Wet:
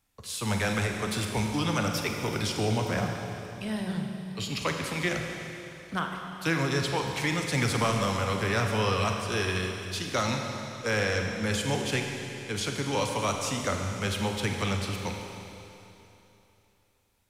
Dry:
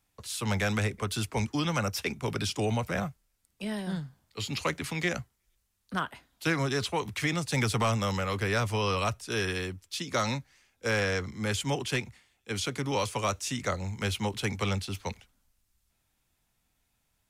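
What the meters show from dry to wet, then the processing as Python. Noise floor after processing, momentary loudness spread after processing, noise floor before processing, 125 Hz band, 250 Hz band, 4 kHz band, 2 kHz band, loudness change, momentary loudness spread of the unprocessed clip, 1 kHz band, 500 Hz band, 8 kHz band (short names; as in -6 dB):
-65 dBFS, 9 LU, -76 dBFS, +1.5 dB, +2.0 dB, +2.0 dB, +2.0 dB, +1.5 dB, 9 LU, +2.0 dB, +2.0 dB, +2.0 dB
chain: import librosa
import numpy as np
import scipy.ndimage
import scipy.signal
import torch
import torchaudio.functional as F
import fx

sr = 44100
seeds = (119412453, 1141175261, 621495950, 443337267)

y = fx.rev_schroeder(x, sr, rt60_s=3.1, comb_ms=33, drr_db=2.5)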